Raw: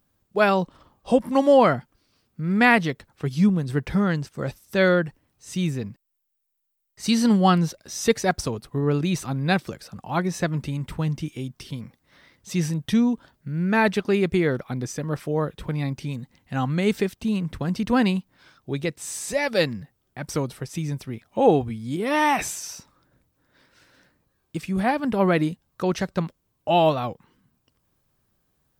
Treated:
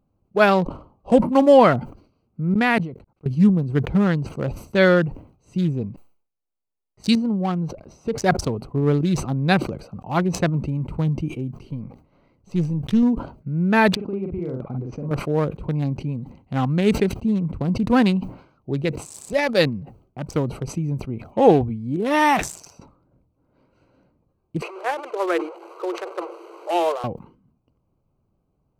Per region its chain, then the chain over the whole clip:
2.54–3.26 s: gate -48 dBFS, range -39 dB + level held to a coarse grid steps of 21 dB
7.15–8.18 s: treble shelf 2.8 kHz -9.5 dB + compression 1.5:1, threshold -36 dBFS
11.60–13.03 s: partial rectifier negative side -3 dB + decay stretcher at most 130 dB/s
13.95–15.11 s: compression 5:1, threshold -29 dBFS + distance through air 280 m + doubling 46 ms -2.5 dB
24.62–27.04 s: one-bit delta coder 64 kbps, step -24 dBFS + rippled Chebyshev high-pass 330 Hz, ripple 6 dB + treble shelf 5.4 kHz -6 dB
whole clip: local Wiener filter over 25 samples; decay stretcher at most 120 dB/s; trim +3.5 dB

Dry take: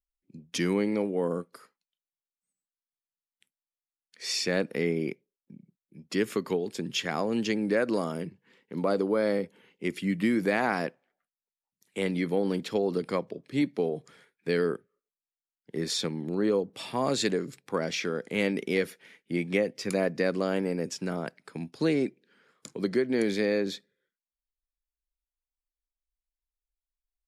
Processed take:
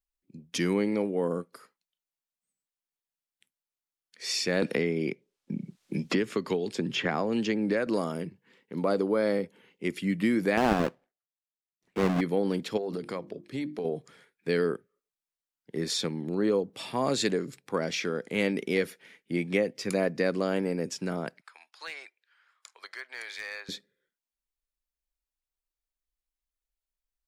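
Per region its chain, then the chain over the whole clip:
4.62–7.87 s: distance through air 53 m + three bands compressed up and down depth 100%
10.57–12.21 s: square wave that keeps the level + low-pass 1.5 kHz 6 dB/octave + gate with hold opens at -55 dBFS, closes at -63 dBFS
12.77–13.85 s: hum notches 50/100/150/200/250/300/350 Hz + compression 5:1, threshold -29 dBFS
21.41–23.69 s: high-pass 930 Hz 24 dB/octave + treble shelf 5.2 kHz -8.5 dB + overload inside the chain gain 29.5 dB
whole clip: none

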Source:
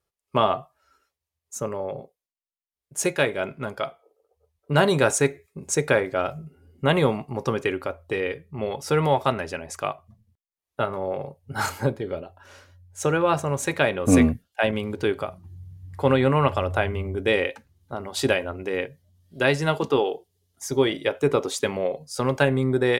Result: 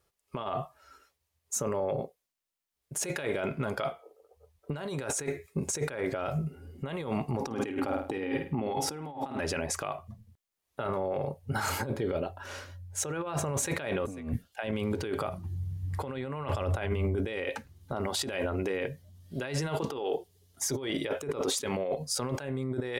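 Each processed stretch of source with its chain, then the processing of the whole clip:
7.41–9.40 s: small resonant body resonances 270/800 Hz, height 14 dB + flutter echo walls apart 8.9 m, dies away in 0.35 s
whole clip: compressor with a negative ratio -31 dBFS, ratio -1; peak limiter -21 dBFS

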